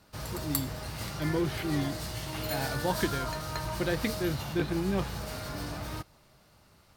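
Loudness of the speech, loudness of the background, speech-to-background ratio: -33.5 LUFS, -36.0 LUFS, 2.5 dB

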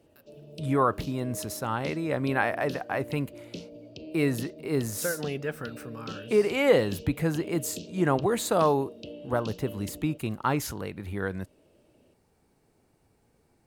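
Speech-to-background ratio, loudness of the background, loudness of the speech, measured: 14.5 dB, -43.0 LUFS, -28.5 LUFS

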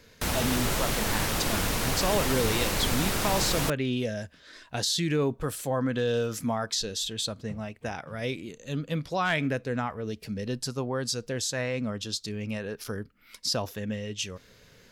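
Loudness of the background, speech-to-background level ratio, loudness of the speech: -28.0 LUFS, -2.5 dB, -30.5 LUFS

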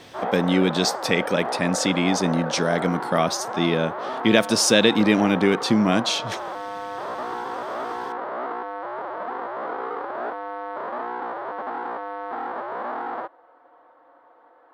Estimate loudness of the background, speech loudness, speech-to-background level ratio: -30.5 LUFS, -21.5 LUFS, 9.0 dB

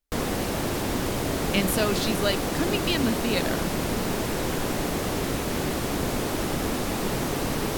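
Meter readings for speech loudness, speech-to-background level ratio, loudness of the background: -27.5 LUFS, 0.0 dB, -27.5 LUFS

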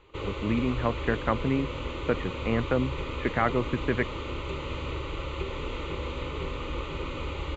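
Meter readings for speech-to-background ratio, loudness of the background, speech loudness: 5.5 dB, -35.0 LUFS, -29.5 LUFS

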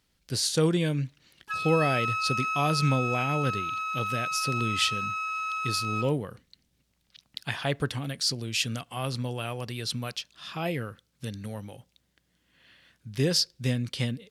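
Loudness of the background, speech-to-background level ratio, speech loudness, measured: -30.0 LUFS, 0.5 dB, -29.5 LUFS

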